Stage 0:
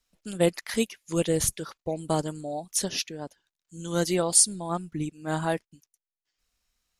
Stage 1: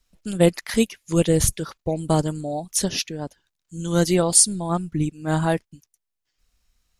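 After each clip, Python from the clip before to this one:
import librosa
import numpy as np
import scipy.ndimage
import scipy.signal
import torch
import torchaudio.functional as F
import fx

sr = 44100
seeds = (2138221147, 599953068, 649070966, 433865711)

y = fx.low_shelf(x, sr, hz=170.0, db=10.0)
y = y * librosa.db_to_amplitude(4.0)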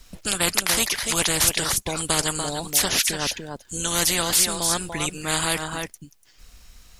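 y = x + 10.0 ** (-16.5 / 20.0) * np.pad(x, (int(291 * sr / 1000.0), 0))[:len(x)]
y = fx.spectral_comp(y, sr, ratio=4.0)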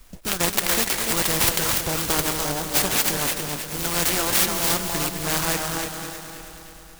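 y = fx.echo_heads(x, sr, ms=106, heads='second and third', feedback_pct=60, wet_db=-9.5)
y = fx.noise_mod_delay(y, sr, seeds[0], noise_hz=5800.0, depth_ms=0.079)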